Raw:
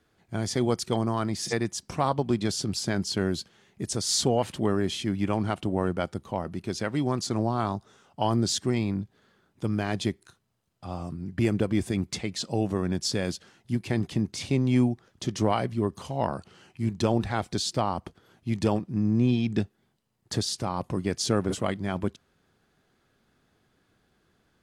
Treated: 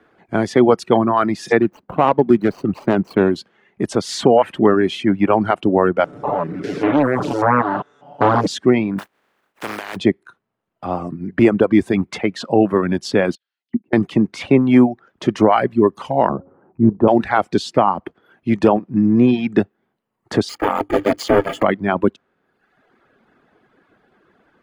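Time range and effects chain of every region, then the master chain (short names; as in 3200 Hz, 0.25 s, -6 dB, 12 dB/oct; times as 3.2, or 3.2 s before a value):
1.62–3.36 median filter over 25 samples + high shelf 9900 Hz +4.5 dB
6.04–8.47 stepped spectrum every 0.2 s + comb 6.9 ms, depth 88% + Doppler distortion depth 0.85 ms
8.98–9.95 spectral contrast lowered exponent 0.23 + compressor 2.5:1, threshold -38 dBFS
13.35–13.93 level quantiser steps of 24 dB + auto-wah 230–5000 Hz, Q 3, down, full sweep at -31.5 dBFS
16.29–17.08 LPF 1100 Hz 24 dB/oct + low shelf 440 Hz +5.5 dB + de-hum 90.98 Hz, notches 6
20.49–21.63 block floating point 3-bit + ripple EQ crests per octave 1.8, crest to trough 11 dB + ring modulator 200 Hz
whole clip: three-band isolator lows -15 dB, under 200 Hz, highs -20 dB, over 2500 Hz; reverb removal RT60 1 s; maximiser +17 dB; gain -1 dB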